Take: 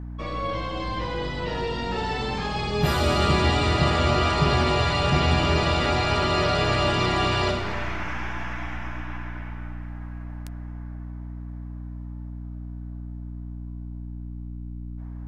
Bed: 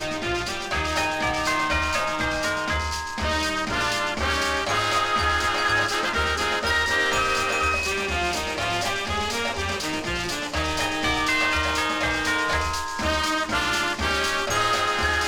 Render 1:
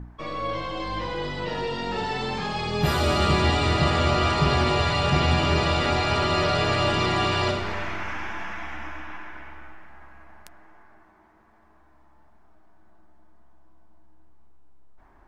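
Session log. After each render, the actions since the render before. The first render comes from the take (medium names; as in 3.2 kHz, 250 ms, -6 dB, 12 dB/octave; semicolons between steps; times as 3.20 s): de-hum 60 Hz, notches 11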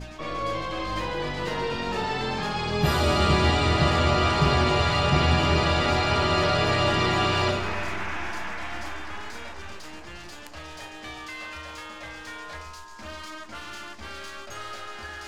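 add bed -15.5 dB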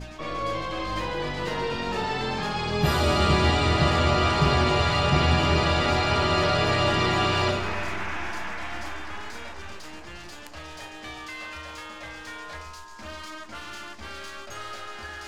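no audible change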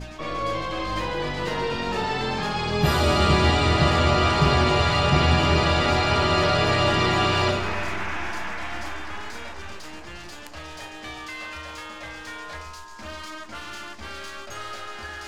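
trim +2 dB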